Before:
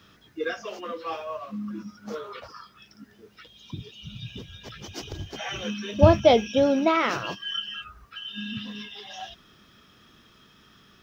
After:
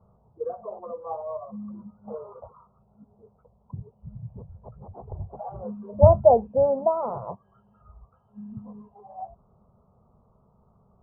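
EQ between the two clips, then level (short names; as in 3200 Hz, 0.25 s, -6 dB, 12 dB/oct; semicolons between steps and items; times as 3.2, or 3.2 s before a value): steep low-pass 1000 Hz 36 dB/oct; fixed phaser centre 740 Hz, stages 4; +3.0 dB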